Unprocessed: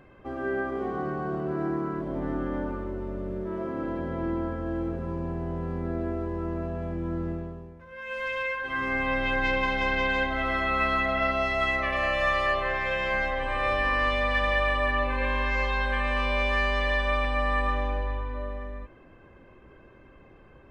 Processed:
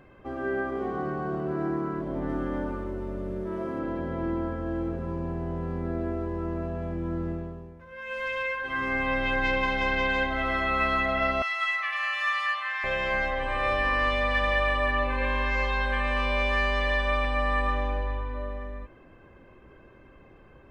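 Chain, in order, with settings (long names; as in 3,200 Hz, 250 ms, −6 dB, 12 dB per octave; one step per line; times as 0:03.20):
0:02.29–0:03.79: high-shelf EQ 5,600 Hz +7.5 dB
0:11.42–0:12.84: high-pass filter 1,100 Hz 24 dB per octave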